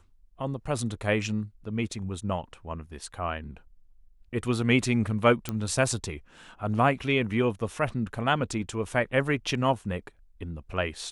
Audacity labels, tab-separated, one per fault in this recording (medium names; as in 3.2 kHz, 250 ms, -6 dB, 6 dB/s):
5.490000	5.490000	pop -15 dBFS